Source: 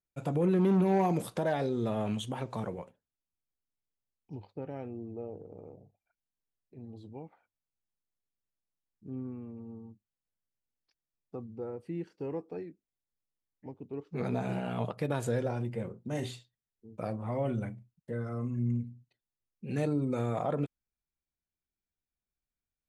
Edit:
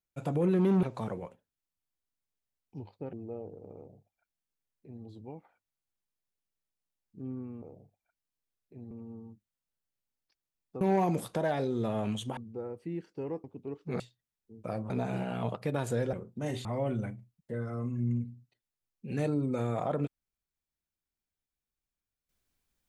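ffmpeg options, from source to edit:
-filter_complex "[0:a]asplit=12[a][b][c][d][e][f][g][h][i][j][k][l];[a]atrim=end=0.832[m];[b]atrim=start=2.388:end=4.692[n];[c]atrim=start=5.008:end=9.502[o];[d]atrim=start=5.628:end=6.922[p];[e]atrim=start=9.498:end=11.402[q];[f]atrim=start=0.828:end=2.392[r];[g]atrim=start=11.398:end=12.472[s];[h]atrim=start=13.698:end=14.262[t];[i]atrim=start=16.338:end=17.242[u];[j]atrim=start=14.258:end=15.492[v];[k]atrim=start=15.818:end=16.342[w];[l]atrim=start=17.238[x];[m][n]acrossfade=d=0.004:c1=hsin:c2=hsin[y];[y][o]acrossfade=d=0.004:c1=hsin:c2=hsin[z];[z][p]acrossfade=d=0.004:c1=hsin:c2=hsin[aa];[aa][q]acrossfade=d=0.004:c1=hsin:c2=hsin[ab];[ab][r]acrossfade=d=0.004:c1=hsin:c2=hsin[ac];[ac][s]acrossfade=d=0.004:c1=hsin:c2=hsin[ad];[ad][t]acrossfade=d=0.004:c1=hsin:c2=hsin[ae];[ae][u]acrossfade=d=0.004:c1=hsin:c2=hsin[af];[af][v]acrossfade=d=0.004:c1=hsin:c2=hsin[ag];[ag][w]acrossfade=d=0.004:c1=hsin:c2=hsin[ah];[ah][x]acrossfade=d=0.004:c1=hsin:c2=hsin"

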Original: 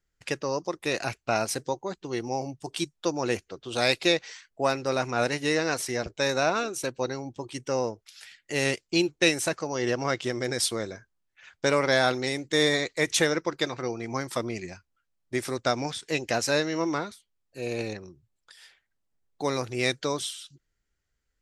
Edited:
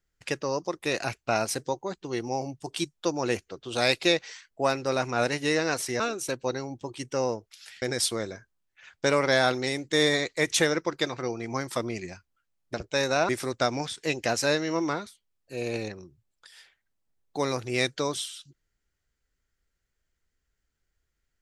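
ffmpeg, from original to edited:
-filter_complex "[0:a]asplit=5[a][b][c][d][e];[a]atrim=end=6.002[f];[b]atrim=start=6.548:end=8.372[g];[c]atrim=start=10.418:end=15.342[h];[d]atrim=start=5.998:end=6.552[i];[e]atrim=start=15.338[j];[f][g]acrossfade=d=0.004:c1=hsin:c2=hsin[k];[k][h]acrossfade=d=0.004:c1=hsin:c2=hsin[l];[l][i]acrossfade=d=0.004:c1=hsin:c2=hsin[m];[m][j]acrossfade=d=0.004:c1=hsin:c2=hsin"

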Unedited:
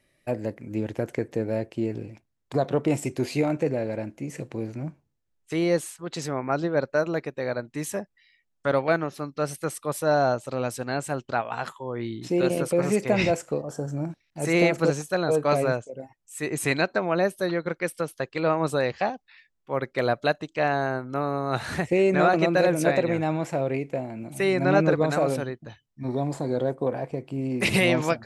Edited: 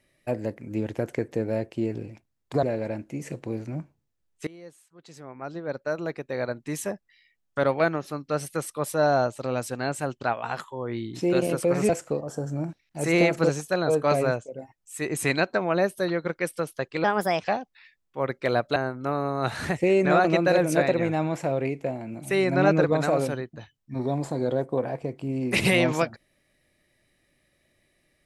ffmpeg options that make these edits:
-filter_complex "[0:a]asplit=7[a][b][c][d][e][f][g];[a]atrim=end=2.632[h];[b]atrim=start=3.708:end=5.55,asetpts=PTS-STARTPTS,afade=t=out:st=1.838:d=0.004:c=hsin:silence=0.0707946[i];[c]atrim=start=5.55:end=12.972,asetpts=PTS-STARTPTS,afade=t=in:d=1.99:c=qua:silence=0.0707946[j];[d]atrim=start=13.298:end=18.454[k];[e]atrim=start=18.45:end=18.97,asetpts=PTS-STARTPTS,asetrate=57330,aresample=44100[l];[f]atrim=start=18.966:end=20.292[m];[g]atrim=start=20.848[n];[i][j]concat=n=2:v=0:a=1[o];[h][o]acrossfade=d=0.004:c1=hsin:c2=hsin[p];[p][k]acrossfade=d=0.004:c1=hsin:c2=hsin[q];[q][l]acrossfade=d=0.004:c1=hsin:c2=hsin[r];[r][m]acrossfade=d=0.004:c1=hsin:c2=hsin[s];[s][n]acrossfade=d=0.004:c1=hsin:c2=hsin"

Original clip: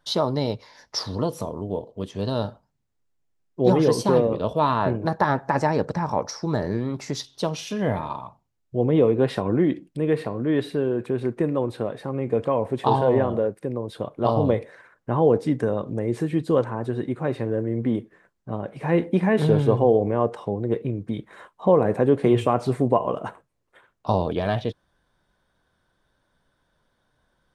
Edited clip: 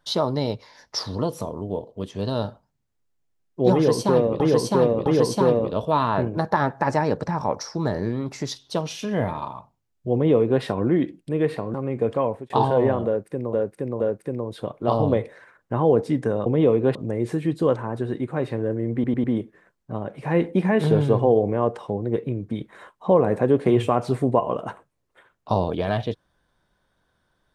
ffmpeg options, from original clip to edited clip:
-filter_complex "[0:a]asplit=12[a][b][c][d][e][f][g][h][i][j][k][l];[a]atrim=end=4.402[m];[b]atrim=start=3.738:end=4.402[n];[c]atrim=start=3.738:end=10.422[o];[d]atrim=start=12.048:end=12.81,asetpts=PTS-STARTPTS,afade=t=out:st=0.512:d=0.25[p];[e]atrim=start=12.81:end=13.842,asetpts=PTS-STARTPTS,afade=t=in:d=0.004:c=hsin[q];[f]atrim=start=13.368:end=13.842[r];[g]atrim=start=13.368:end=15.832[s];[h]atrim=start=8.808:end=9.302[t];[i]atrim=start=15.828:end=17.922[u];[j]atrim=start=17.818:end=17.922[v];[k]atrim=start=17.818:end=17.922[w];[l]atrim=start=17.818[x];[m][n]acrossfade=d=0.004:c1=hsin:c2=hsin[y];[y][o]acrossfade=d=0.004:c1=hsin:c2=hsin[z];[p][q]concat=n=2:v=0:a=1[aa];[z][aa]acrossfade=d=0.004:c1=hsin:c2=hsin[ab];[ab][r]acrossfade=d=0.004:c1=hsin:c2=hsin[ac];[ac][s]acrossfade=d=0.004:c1=hsin:c2=hsin[ad];[ad][t]acrossfade=d=0.004:c1=hsin:c2=hsin[ae];[ae][u]acrossfade=d=0.004:c1=hsin:c2=hsin[af];[af][v]acrossfade=d=0.004:c1=hsin:c2=hsin[ag];[ag][w]acrossfade=d=0.004:c1=hsin:c2=hsin[ah];[ah][x]acrossfade=d=0.004:c1=hsin:c2=hsin"

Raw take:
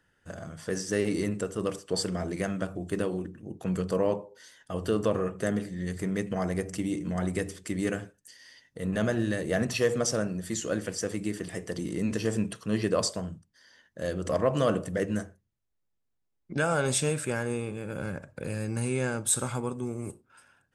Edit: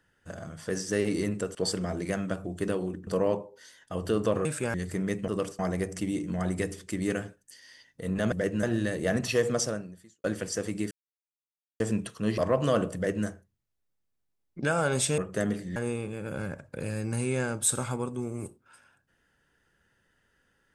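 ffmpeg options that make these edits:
-filter_complex "[0:a]asplit=15[a][b][c][d][e][f][g][h][i][j][k][l][m][n][o];[a]atrim=end=1.552[p];[b]atrim=start=1.858:end=3.382[q];[c]atrim=start=3.858:end=5.242[r];[d]atrim=start=17.108:end=17.402[s];[e]atrim=start=5.818:end=6.362[t];[f]atrim=start=1.548:end=1.862[u];[g]atrim=start=6.358:end=9.092[v];[h]atrim=start=14.878:end=15.192[w];[i]atrim=start=9.088:end=10.7,asetpts=PTS-STARTPTS,afade=t=out:st=0.972:d=0.64:c=qua[x];[j]atrim=start=10.7:end=11.37,asetpts=PTS-STARTPTS,afade=t=in:d=0.004:c=hsin,afade=t=out:st=0.666:d=0.004:c=hsin[y];[k]atrim=start=11.37:end=12.26,asetpts=PTS-STARTPTS,volume=0[z];[l]atrim=start=12.26:end=12.842,asetpts=PTS-STARTPTS,afade=t=in:d=0.004:c=hsin[aa];[m]atrim=start=14.308:end=17.112[ab];[n]atrim=start=5.238:end=5.822[ac];[o]atrim=start=17.398[ad];[p][q]acrossfade=d=0.004:c1=hsin:c2=hsin[ae];[ae][r]acrossfade=d=0.004:c1=hsin:c2=hsin[af];[af][s]acrossfade=d=0.004:c1=hsin:c2=hsin[ag];[ag][t]acrossfade=d=0.004:c1=hsin:c2=hsin[ah];[ah][u]acrossfade=d=0.004:c1=hsin:c2=hsin[ai];[ai][v]acrossfade=d=0.004:c1=hsin:c2=hsin[aj];[aj][w]acrossfade=d=0.004:c1=hsin:c2=hsin[ak];[x][y][z][aa]concat=n=4:v=0:a=1[al];[ak][al]acrossfade=d=0.004:c1=hsin:c2=hsin[am];[am][ab]acrossfade=d=0.004:c1=hsin:c2=hsin[an];[an][ac]acrossfade=d=0.004:c1=hsin:c2=hsin[ao];[ao][ad]acrossfade=d=0.004:c1=hsin:c2=hsin"

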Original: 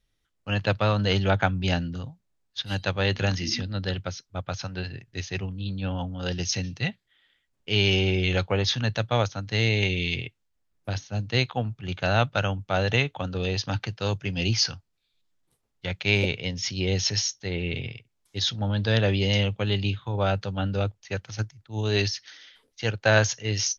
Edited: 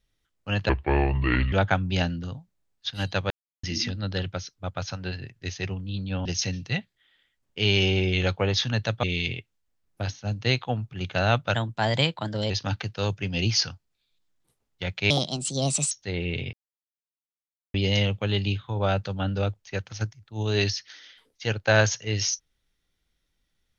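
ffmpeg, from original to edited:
-filter_complex "[0:a]asplit=13[a][b][c][d][e][f][g][h][i][j][k][l][m];[a]atrim=end=0.694[n];[b]atrim=start=0.69:end=1.24,asetpts=PTS-STARTPTS,asetrate=29106,aresample=44100[o];[c]atrim=start=1.236:end=3.02,asetpts=PTS-STARTPTS,afade=t=out:st=1.78:d=0.004:c=hsin[p];[d]atrim=start=3.02:end=3.35,asetpts=PTS-STARTPTS,volume=0[q];[e]atrim=start=3.35:end=5.972,asetpts=PTS-STARTPTS,afade=t=in:d=0.004:c=hsin[r];[f]atrim=start=6.358:end=9.142[s];[g]atrim=start=9.908:end=12.424[t];[h]atrim=start=12.42:end=13.53,asetpts=PTS-STARTPTS,asetrate=51156,aresample=44100,atrim=end_sample=42199,asetpts=PTS-STARTPTS[u];[i]atrim=start=13.526:end=16.134[v];[j]atrim=start=16.13:end=17.29,asetpts=PTS-STARTPTS,asetrate=63063,aresample=44100,atrim=end_sample=35773,asetpts=PTS-STARTPTS[w];[k]atrim=start=17.286:end=17.91,asetpts=PTS-STARTPTS,afade=t=out:st=0.62:d=0.004:c=hsin[x];[l]atrim=start=17.91:end=19.12,asetpts=PTS-STARTPTS,volume=0[y];[m]atrim=start=19.12,asetpts=PTS-STARTPTS,afade=t=in:d=0.004:c=hsin[z];[n][o]acrossfade=d=0.004:c1=hsin:c2=hsin[aa];[p][q][r]concat=n=3:v=0:a=1[ab];[aa][ab]acrossfade=d=0.004:c1=hsin:c2=hsin[ac];[ac][s]acrossfade=d=0.004:c1=hsin:c2=hsin[ad];[ad][t]acrossfade=d=0.004:c1=hsin:c2=hsin[ae];[ae][u]acrossfade=d=0.004:c1=hsin:c2=hsin[af];[af][v]acrossfade=d=0.004:c1=hsin:c2=hsin[ag];[ag][w]acrossfade=d=0.004:c1=hsin:c2=hsin[ah];[x][y][z]concat=n=3:v=0:a=1[ai];[ah][ai]acrossfade=d=0.004:c1=hsin:c2=hsin"

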